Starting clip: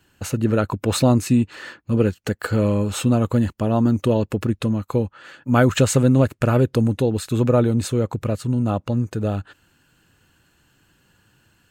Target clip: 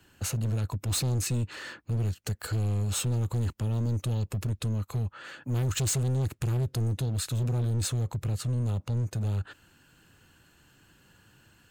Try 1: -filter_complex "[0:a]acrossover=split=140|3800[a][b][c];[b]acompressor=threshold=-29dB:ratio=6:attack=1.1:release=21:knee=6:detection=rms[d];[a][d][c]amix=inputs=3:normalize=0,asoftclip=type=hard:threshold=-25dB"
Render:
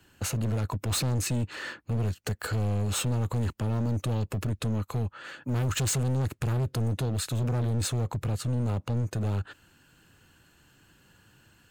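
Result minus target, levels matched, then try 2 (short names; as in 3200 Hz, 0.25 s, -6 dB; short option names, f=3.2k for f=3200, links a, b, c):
compressor: peak gain reduction -7.5 dB
-filter_complex "[0:a]acrossover=split=140|3800[a][b][c];[b]acompressor=threshold=-38dB:ratio=6:attack=1.1:release=21:knee=6:detection=rms[d];[a][d][c]amix=inputs=3:normalize=0,asoftclip=type=hard:threshold=-25dB"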